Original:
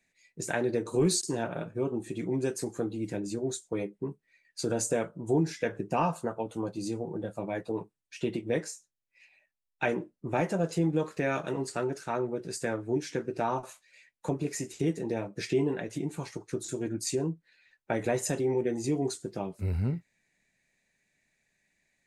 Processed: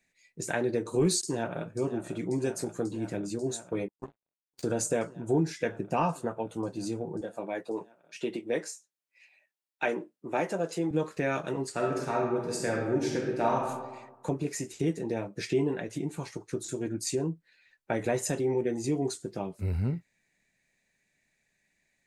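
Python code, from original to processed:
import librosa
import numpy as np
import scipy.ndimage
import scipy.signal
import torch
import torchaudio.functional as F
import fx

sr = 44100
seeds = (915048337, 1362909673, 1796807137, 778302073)

y = fx.echo_throw(x, sr, start_s=1.22, length_s=0.47, ms=540, feedback_pct=85, wet_db=-11.5)
y = fx.power_curve(y, sr, exponent=3.0, at=(3.88, 4.63))
y = fx.highpass(y, sr, hz=260.0, slope=12, at=(7.21, 10.91))
y = fx.reverb_throw(y, sr, start_s=11.71, length_s=1.96, rt60_s=1.2, drr_db=-0.5)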